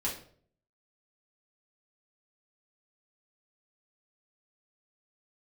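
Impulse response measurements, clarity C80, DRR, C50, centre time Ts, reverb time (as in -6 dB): 12.0 dB, -5.5 dB, 7.0 dB, 27 ms, 0.55 s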